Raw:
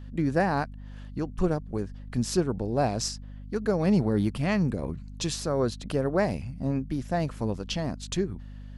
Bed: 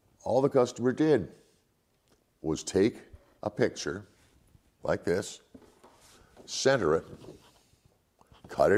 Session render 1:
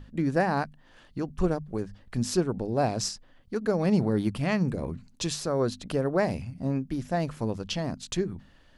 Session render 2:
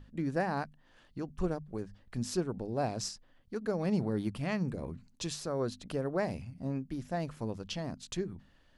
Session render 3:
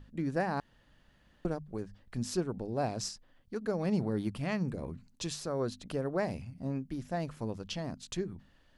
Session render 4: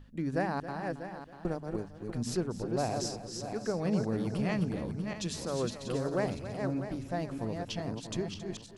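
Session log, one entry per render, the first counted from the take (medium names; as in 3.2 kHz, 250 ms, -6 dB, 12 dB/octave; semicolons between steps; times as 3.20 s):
hum notches 50/100/150/200/250 Hz
trim -7 dB
0.60–1.45 s: room tone
backward echo that repeats 321 ms, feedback 48%, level -5 dB; delay 272 ms -13 dB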